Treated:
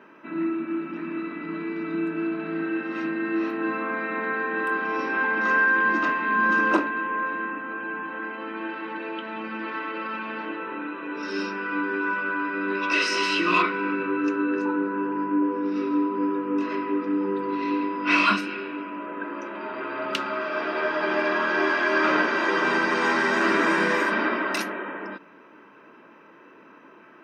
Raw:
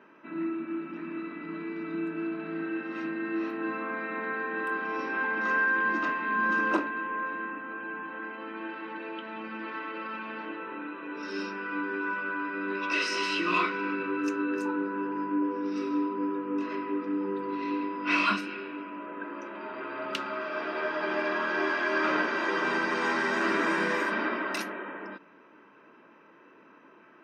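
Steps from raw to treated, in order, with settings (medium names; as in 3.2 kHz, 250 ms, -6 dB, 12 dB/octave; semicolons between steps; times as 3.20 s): 13.62–16.14 s: distance through air 170 m; trim +5.5 dB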